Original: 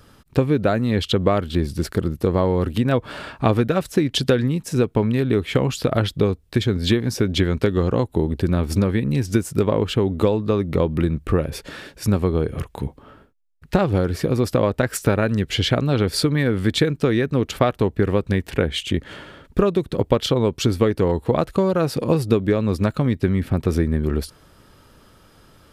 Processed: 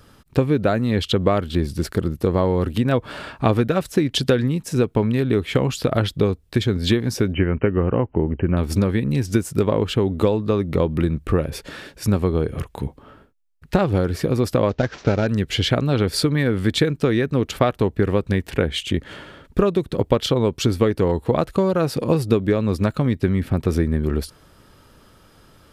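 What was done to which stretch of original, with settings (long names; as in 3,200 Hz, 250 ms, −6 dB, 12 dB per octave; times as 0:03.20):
0:07.33–0:08.57: linear-phase brick-wall low-pass 3,100 Hz
0:14.69–0:15.27: variable-slope delta modulation 32 kbit/s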